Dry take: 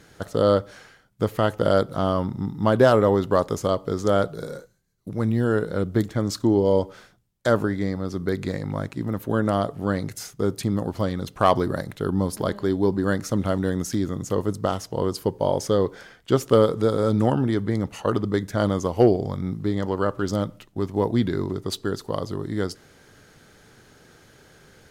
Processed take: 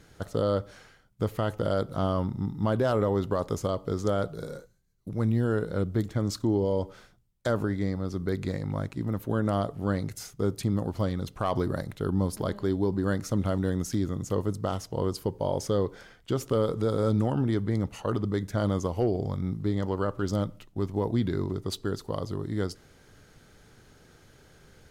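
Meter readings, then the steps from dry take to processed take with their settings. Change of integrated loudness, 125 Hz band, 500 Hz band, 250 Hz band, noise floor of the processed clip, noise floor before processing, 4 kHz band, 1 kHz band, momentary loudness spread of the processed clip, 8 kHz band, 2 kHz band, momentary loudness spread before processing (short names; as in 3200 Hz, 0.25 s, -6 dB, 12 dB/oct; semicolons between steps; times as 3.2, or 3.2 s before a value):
-5.5 dB, -2.5 dB, -7.0 dB, -5.0 dB, -58 dBFS, -54 dBFS, -6.5 dB, -7.5 dB, 6 LU, -5.0 dB, -7.5 dB, 10 LU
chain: low shelf 82 Hz +10.5 dB; limiter -12 dBFS, peak gain reduction 7.5 dB; bell 1700 Hz -2.5 dB 0.21 oct; gain -5 dB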